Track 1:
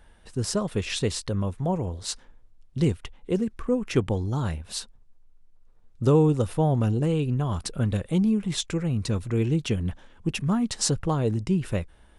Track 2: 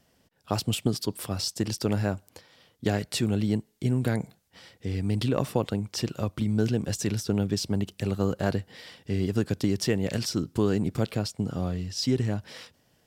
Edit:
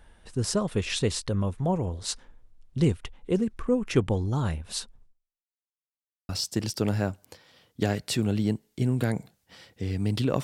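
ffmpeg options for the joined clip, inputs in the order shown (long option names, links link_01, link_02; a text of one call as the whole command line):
ffmpeg -i cue0.wav -i cue1.wav -filter_complex "[0:a]apad=whole_dur=10.43,atrim=end=10.43,asplit=2[link_01][link_02];[link_01]atrim=end=5.63,asetpts=PTS-STARTPTS,afade=type=out:start_time=5.05:duration=0.58:curve=exp[link_03];[link_02]atrim=start=5.63:end=6.29,asetpts=PTS-STARTPTS,volume=0[link_04];[1:a]atrim=start=1.33:end=5.47,asetpts=PTS-STARTPTS,afade=type=in:duration=0.004:curve=hsin[link_05];[link_03][link_04][link_05]concat=n=3:v=0:a=1" out.wav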